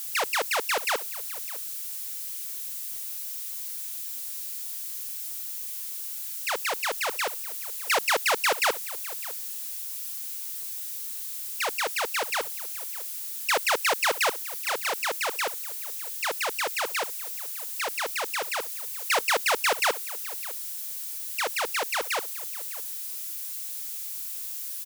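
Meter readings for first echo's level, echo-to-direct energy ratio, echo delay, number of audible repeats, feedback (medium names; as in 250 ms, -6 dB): -18.0 dB, -18.0 dB, 606 ms, 1, no regular repeats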